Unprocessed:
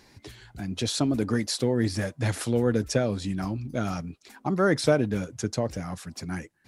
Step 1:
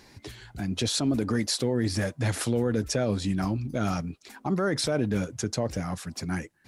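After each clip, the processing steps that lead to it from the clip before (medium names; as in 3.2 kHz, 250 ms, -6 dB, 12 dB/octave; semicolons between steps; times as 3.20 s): peak limiter -19.5 dBFS, peak gain reduction 11 dB; trim +2.5 dB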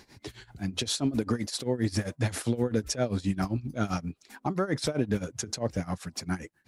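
tremolo 7.6 Hz, depth 87%; trim +1.5 dB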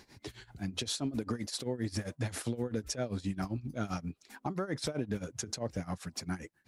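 compression 2:1, threshold -30 dBFS, peak gain reduction 5.5 dB; trim -3 dB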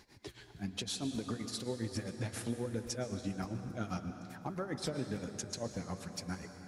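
flange 1.1 Hz, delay 0.7 ms, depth 7.4 ms, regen +73%; reverberation RT60 3.8 s, pre-delay 103 ms, DRR 7.5 dB; trim +1 dB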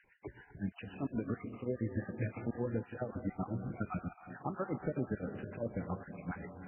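random holes in the spectrogram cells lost 28%; peaking EQ 2.8 kHz -5 dB 0.38 oct; trim +2.5 dB; MP3 8 kbps 12 kHz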